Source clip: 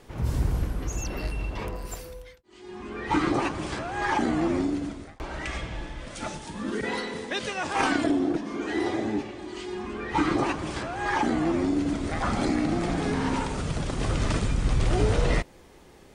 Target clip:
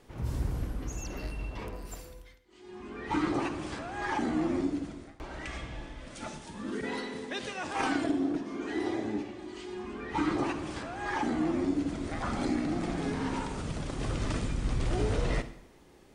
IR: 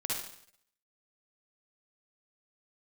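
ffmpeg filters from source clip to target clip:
-filter_complex "[0:a]asplit=2[a][b];[b]equalizer=f=270:t=o:w=0.86:g=9.5[c];[1:a]atrim=start_sample=2205[d];[c][d]afir=irnorm=-1:irlink=0,volume=-14dB[e];[a][e]amix=inputs=2:normalize=0,volume=-8dB"

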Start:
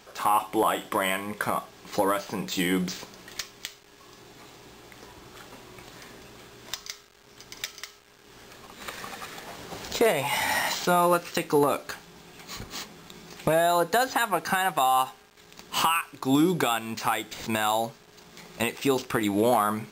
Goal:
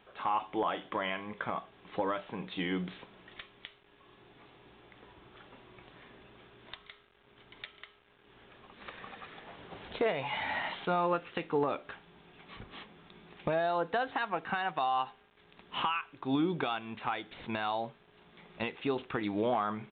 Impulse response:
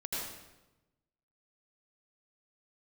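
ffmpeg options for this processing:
-af "aresample=8000,aresample=44100,volume=-8dB"

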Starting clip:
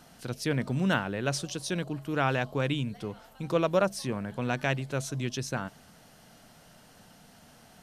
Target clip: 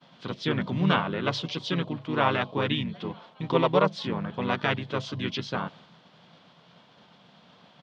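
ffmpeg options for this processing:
-filter_complex "[0:a]asplit=2[a][b];[b]asetrate=35002,aresample=44100,atempo=1.25992,volume=-2dB[c];[a][c]amix=inputs=2:normalize=0,agate=range=-33dB:threshold=-49dB:ratio=3:detection=peak,highpass=150,equalizer=f=170:t=q:w=4:g=6,equalizer=f=1k:t=q:w=4:g=7,equalizer=f=3.4k:t=q:w=4:g=9,lowpass=f=4.5k:w=0.5412,lowpass=f=4.5k:w=1.3066"

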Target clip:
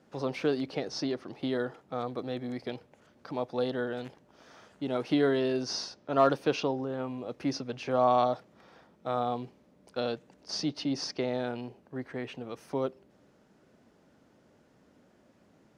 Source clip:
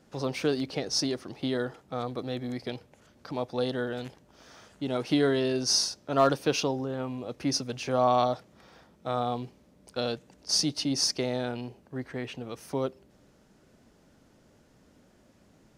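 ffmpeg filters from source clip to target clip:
-filter_complex "[0:a]highshelf=f=3.8k:g=-9.5,acrossover=split=5600[a][b];[a]highpass=f=170:p=1[c];[b]acompressor=threshold=-59dB:ratio=6[d];[c][d]amix=inputs=2:normalize=0"

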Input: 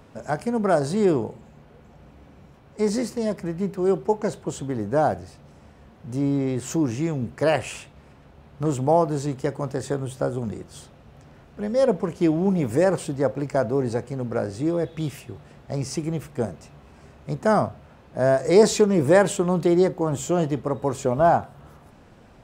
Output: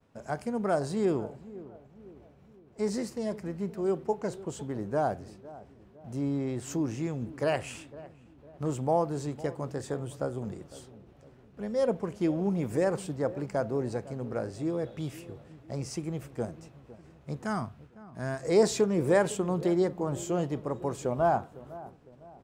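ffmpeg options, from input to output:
-filter_complex "[0:a]asettb=1/sr,asplit=3[a][b][c];[a]atrim=end=17.454[d];[b]atrim=start=17.45:end=18.43,asetpts=PTS-STARTPTS,afade=t=in:d=0.004:c=qsin,afade=t=out:st=0.976:d=0.004:c=qsin,equalizer=f=550:w=1.6:g=-15[e];[c]atrim=start=18.426[f];[d][e]acrossfade=d=0.004:c1=hsin:c2=qsin[g];[g][f]acrossfade=d=0.004:c1=qsin:c2=hsin,agate=range=-33dB:threshold=-44dB:ratio=3:detection=peak,asplit=2[h][i];[i]adelay=506,lowpass=f=920:p=1,volume=-16.5dB,asplit=2[j][k];[k]adelay=506,lowpass=f=920:p=1,volume=0.49,asplit=2[l][m];[m]adelay=506,lowpass=f=920:p=1,volume=0.49,asplit=2[n][o];[o]adelay=506,lowpass=f=920:p=1,volume=0.49[p];[j][l][n][p]amix=inputs=4:normalize=0[q];[h][q]amix=inputs=2:normalize=0,volume=-7.5dB"

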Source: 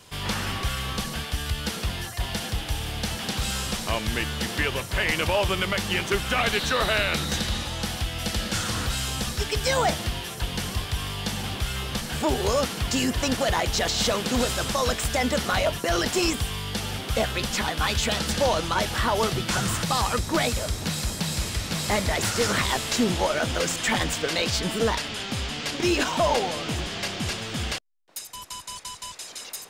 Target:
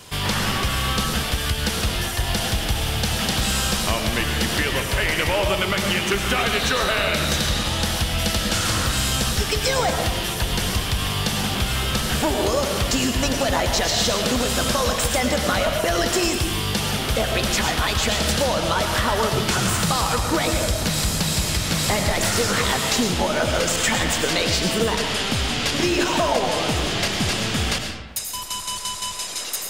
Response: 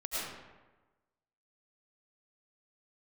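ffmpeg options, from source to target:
-filter_complex "[0:a]acompressor=threshold=-26dB:ratio=6,asplit=2[a][b];[1:a]atrim=start_sample=2205,highshelf=f=6.8k:g=6.5[c];[b][c]afir=irnorm=-1:irlink=0,volume=-6dB[d];[a][d]amix=inputs=2:normalize=0,volume=5dB"

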